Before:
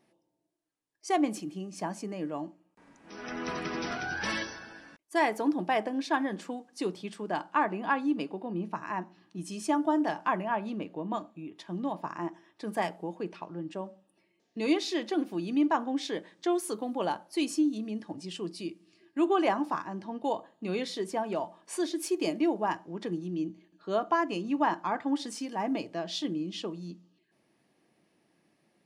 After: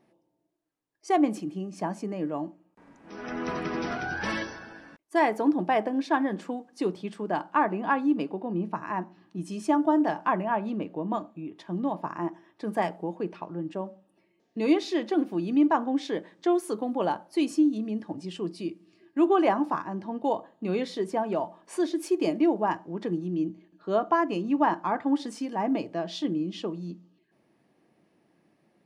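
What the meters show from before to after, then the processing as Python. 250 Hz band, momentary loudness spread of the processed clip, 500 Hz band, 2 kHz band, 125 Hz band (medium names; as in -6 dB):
+4.5 dB, 12 LU, +4.0 dB, +1.0 dB, +4.5 dB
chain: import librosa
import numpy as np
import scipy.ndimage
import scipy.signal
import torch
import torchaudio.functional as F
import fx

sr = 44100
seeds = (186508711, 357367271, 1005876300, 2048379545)

y = fx.high_shelf(x, sr, hz=2300.0, db=-9.5)
y = y * 10.0 ** (4.5 / 20.0)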